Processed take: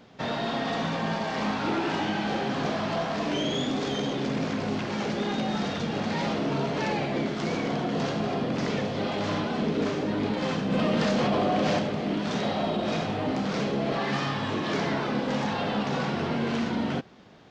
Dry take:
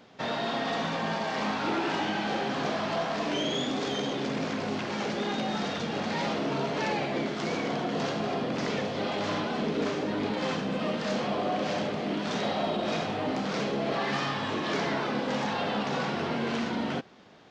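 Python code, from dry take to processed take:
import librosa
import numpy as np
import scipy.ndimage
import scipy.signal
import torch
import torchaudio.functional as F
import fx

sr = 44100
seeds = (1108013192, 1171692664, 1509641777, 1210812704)

y = fx.low_shelf(x, sr, hz=190.0, db=8.5)
y = fx.env_flatten(y, sr, amount_pct=100, at=(10.7, 11.78), fade=0.02)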